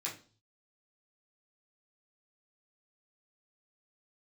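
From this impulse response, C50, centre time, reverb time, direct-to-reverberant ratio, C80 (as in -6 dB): 9.0 dB, 24 ms, 0.40 s, -6.5 dB, 15.5 dB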